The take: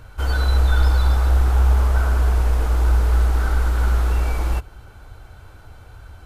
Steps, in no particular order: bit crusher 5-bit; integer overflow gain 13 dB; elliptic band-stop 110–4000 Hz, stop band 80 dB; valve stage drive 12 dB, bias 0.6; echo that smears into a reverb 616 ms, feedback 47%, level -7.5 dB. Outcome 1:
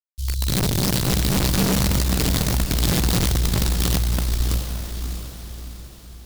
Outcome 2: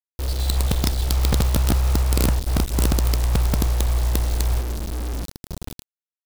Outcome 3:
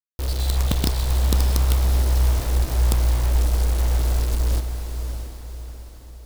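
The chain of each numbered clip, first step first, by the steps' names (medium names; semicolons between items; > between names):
bit crusher > elliptic band-stop > integer overflow > echo that smears into a reverb > valve stage; echo that smears into a reverb > valve stage > elliptic band-stop > integer overflow > bit crusher; valve stage > elliptic band-stop > bit crusher > integer overflow > echo that smears into a reverb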